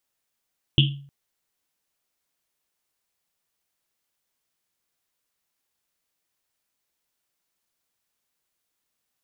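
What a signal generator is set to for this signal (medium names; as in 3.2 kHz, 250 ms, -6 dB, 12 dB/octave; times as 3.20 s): Risset drum length 0.31 s, pitch 140 Hz, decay 0.53 s, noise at 3.1 kHz, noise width 630 Hz, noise 35%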